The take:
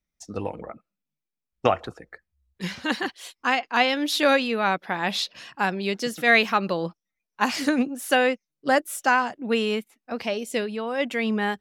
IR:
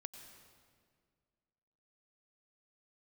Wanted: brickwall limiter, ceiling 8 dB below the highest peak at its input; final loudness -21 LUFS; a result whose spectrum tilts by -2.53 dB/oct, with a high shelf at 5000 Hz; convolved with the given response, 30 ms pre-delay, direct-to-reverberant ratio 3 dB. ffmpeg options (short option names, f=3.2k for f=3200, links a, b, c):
-filter_complex "[0:a]highshelf=f=5k:g=-5.5,alimiter=limit=-13.5dB:level=0:latency=1,asplit=2[a][b];[1:a]atrim=start_sample=2205,adelay=30[c];[b][c]afir=irnorm=-1:irlink=0,volume=1.5dB[d];[a][d]amix=inputs=2:normalize=0,volume=4dB"